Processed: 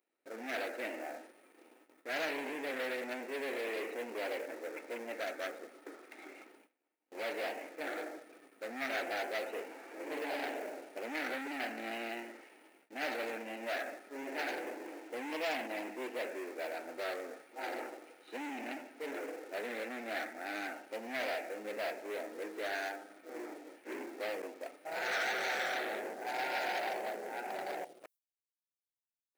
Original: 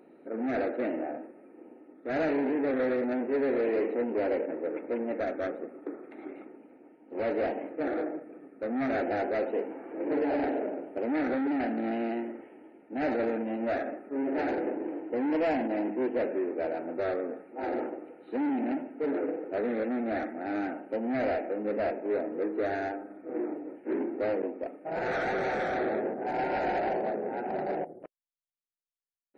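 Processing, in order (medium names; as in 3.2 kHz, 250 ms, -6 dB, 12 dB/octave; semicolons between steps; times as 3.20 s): waveshaping leveller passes 1; gate with hold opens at -40 dBFS; differentiator; trim +10 dB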